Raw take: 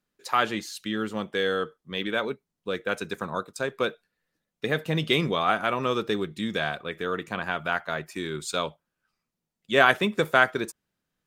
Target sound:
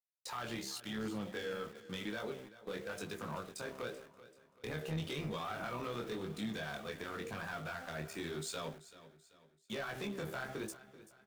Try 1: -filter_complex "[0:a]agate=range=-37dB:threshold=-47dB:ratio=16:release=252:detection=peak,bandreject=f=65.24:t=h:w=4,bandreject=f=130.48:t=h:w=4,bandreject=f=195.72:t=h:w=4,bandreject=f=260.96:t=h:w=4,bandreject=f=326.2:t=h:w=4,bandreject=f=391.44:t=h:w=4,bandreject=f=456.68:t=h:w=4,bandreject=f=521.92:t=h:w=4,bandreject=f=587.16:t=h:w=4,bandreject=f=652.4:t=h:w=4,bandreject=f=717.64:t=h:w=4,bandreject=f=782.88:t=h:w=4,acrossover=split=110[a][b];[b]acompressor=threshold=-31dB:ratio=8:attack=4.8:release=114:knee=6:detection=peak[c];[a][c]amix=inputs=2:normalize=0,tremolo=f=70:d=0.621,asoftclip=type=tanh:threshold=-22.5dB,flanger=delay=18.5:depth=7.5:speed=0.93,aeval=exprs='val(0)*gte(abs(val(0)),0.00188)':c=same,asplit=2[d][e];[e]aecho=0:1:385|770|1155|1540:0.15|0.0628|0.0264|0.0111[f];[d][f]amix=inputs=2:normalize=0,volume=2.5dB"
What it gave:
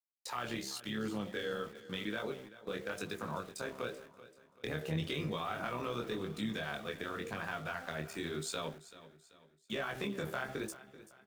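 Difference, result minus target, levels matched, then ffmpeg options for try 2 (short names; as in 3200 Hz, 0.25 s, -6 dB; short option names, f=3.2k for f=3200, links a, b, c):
soft clip: distortion -12 dB
-filter_complex "[0:a]agate=range=-37dB:threshold=-47dB:ratio=16:release=252:detection=peak,bandreject=f=65.24:t=h:w=4,bandreject=f=130.48:t=h:w=4,bandreject=f=195.72:t=h:w=4,bandreject=f=260.96:t=h:w=4,bandreject=f=326.2:t=h:w=4,bandreject=f=391.44:t=h:w=4,bandreject=f=456.68:t=h:w=4,bandreject=f=521.92:t=h:w=4,bandreject=f=587.16:t=h:w=4,bandreject=f=652.4:t=h:w=4,bandreject=f=717.64:t=h:w=4,bandreject=f=782.88:t=h:w=4,acrossover=split=110[a][b];[b]acompressor=threshold=-31dB:ratio=8:attack=4.8:release=114:knee=6:detection=peak[c];[a][c]amix=inputs=2:normalize=0,tremolo=f=70:d=0.621,asoftclip=type=tanh:threshold=-33.5dB,flanger=delay=18.5:depth=7.5:speed=0.93,aeval=exprs='val(0)*gte(abs(val(0)),0.00188)':c=same,asplit=2[d][e];[e]aecho=0:1:385|770|1155|1540:0.15|0.0628|0.0264|0.0111[f];[d][f]amix=inputs=2:normalize=0,volume=2.5dB"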